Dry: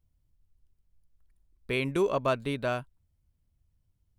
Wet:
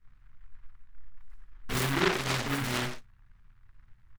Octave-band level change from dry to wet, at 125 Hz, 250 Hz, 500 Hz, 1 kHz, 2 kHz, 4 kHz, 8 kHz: +3.0 dB, 0.0 dB, -6.0 dB, +0.5 dB, +4.0 dB, +7.5 dB, +14.0 dB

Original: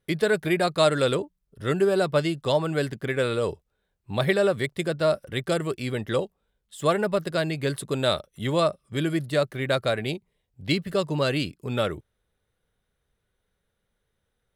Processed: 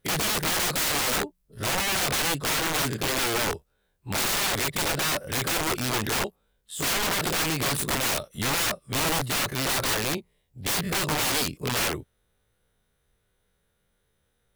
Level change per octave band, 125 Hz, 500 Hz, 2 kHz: -4.0 dB, -9.0 dB, +3.5 dB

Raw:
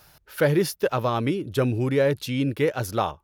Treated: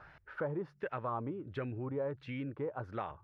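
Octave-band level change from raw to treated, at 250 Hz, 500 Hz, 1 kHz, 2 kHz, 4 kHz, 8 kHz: -15.5 dB, -15.5 dB, -12.0 dB, -15.5 dB, -24.5 dB, under -40 dB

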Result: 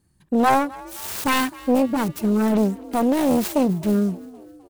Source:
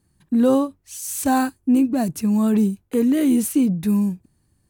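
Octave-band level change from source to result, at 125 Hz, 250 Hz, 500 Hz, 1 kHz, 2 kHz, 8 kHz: -1.0 dB, -3.0 dB, +2.0 dB, +5.5 dB, +6.5 dB, -4.0 dB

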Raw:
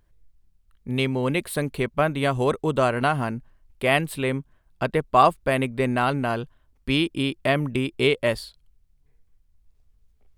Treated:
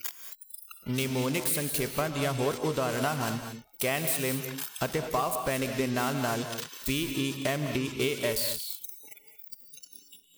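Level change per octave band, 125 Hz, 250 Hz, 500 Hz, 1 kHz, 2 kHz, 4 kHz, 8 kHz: -6.5 dB, -6.0 dB, -7.0 dB, -9.5 dB, -6.5 dB, -3.5 dB, +8.5 dB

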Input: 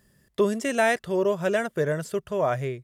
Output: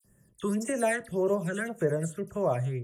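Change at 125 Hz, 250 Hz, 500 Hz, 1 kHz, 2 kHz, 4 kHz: +0.5 dB, -2.0 dB, -5.0 dB, -6.5 dB, -6.5 dB, -11.0 dB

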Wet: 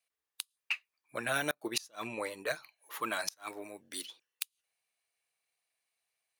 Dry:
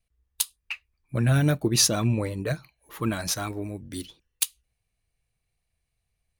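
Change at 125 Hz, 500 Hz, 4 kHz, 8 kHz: -29.0 dB, -8.0 dB, -10.5 dB, -15.0 dB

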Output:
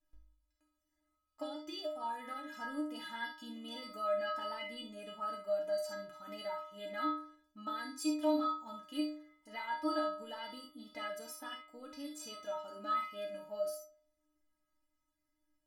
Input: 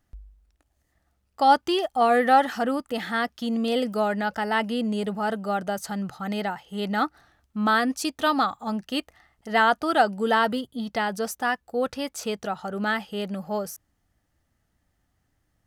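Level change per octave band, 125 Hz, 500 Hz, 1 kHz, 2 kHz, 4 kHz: under -25 dB, -12.5 dB, -17.0 dB, -18.5 dB, -13.5 dB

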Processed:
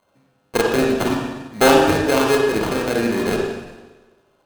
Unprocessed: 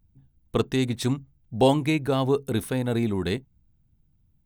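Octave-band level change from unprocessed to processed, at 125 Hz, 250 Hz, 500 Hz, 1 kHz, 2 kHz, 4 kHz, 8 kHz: -2.0 dB, +5.0 dB, +8.5 dB, +10.0 dB, +13.5 dB, +8.0 dB, +11.5 dB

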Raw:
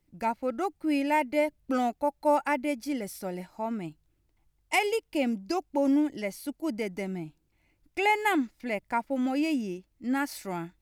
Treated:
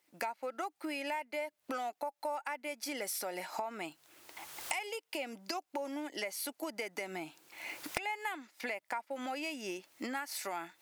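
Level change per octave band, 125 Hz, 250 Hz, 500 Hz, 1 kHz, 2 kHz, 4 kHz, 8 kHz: -16.5 dB, -15.5 dB, -10.5 dB, -9.5 dB, -7.0 dB, -3.0 dB, +1.0 dB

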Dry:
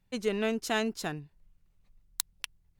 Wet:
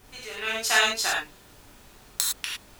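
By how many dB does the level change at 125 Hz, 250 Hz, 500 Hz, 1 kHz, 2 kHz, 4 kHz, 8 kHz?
-9.5 dB, -12.0 dB, -2.5 dB, +8.0 dB, +12.0 dB, +12.5 dB, +12.0 dB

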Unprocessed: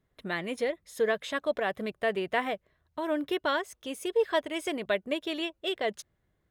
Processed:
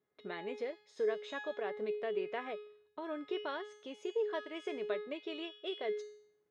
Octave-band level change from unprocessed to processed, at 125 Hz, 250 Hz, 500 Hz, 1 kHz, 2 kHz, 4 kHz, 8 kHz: no reading, -10.5 dB, -7.0 dB, -11.0 dB, -12.0 dB, -11.0 dB, under -15 dB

